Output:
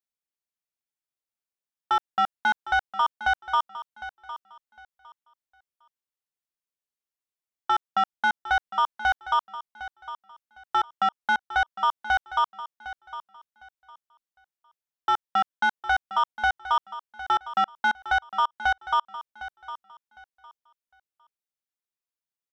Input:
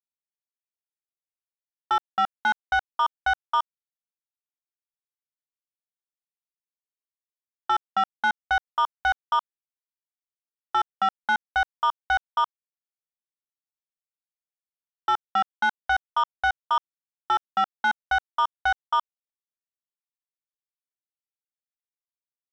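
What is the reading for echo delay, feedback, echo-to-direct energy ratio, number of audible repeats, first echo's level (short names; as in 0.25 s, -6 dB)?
0.757 s, 23%, -13.5 dB, 2, -14.0 dB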